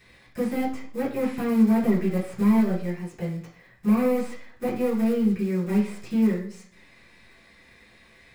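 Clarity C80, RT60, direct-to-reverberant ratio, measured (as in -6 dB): 11.0 dB, 0.55 s, -7.0 dB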